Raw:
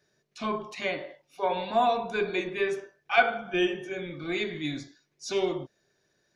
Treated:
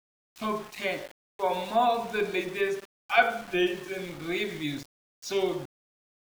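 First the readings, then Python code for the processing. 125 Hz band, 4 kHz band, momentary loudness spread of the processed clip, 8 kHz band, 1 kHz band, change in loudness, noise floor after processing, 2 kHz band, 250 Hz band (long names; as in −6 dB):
−0.5 dB, 0.0 dB, 12 LU, can't be measured, 0.0 dB, 0.0 dB, below −85 dBFS, 0.0 dB, 0.0 dB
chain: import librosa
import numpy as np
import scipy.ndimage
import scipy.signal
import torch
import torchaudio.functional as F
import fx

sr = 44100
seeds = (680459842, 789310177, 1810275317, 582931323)

y = np.where(np.abs(x) >= 10.0 ** (-40.5 / 20.0), x, 0.0)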